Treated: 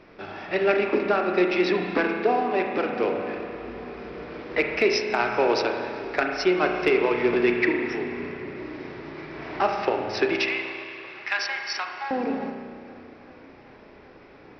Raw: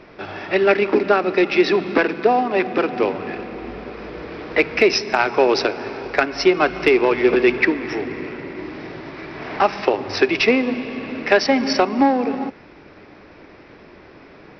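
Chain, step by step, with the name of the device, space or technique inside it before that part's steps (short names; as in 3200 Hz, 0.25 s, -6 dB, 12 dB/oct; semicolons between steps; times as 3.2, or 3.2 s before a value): 10.36–12.11 inverse Chebyshev high-pass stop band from 370 Hz, stop band 50 dB; dub delay into a spring reverb (darkening echo 0.388 s, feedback 83%, low-pass 2700 Hz, level -24 dB; spring tank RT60 1.9 s, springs 33 ms, chirp 60 ms, DRR 3 dB); gain -7 dB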